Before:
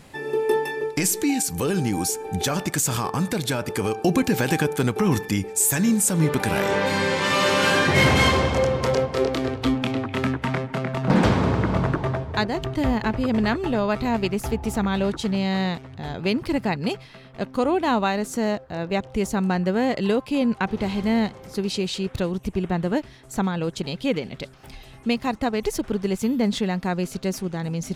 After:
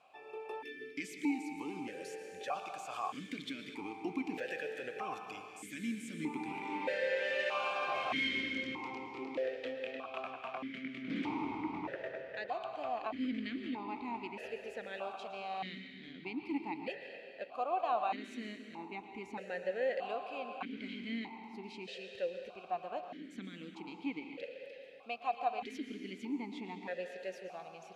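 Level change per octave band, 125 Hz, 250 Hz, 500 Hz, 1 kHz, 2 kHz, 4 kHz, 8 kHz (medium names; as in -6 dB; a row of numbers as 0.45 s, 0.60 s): -31.0 dB, -18.5 dB, -16.0 dB, -12.0 dB, -14.0 dB, -16.5 dB, -31.0 dB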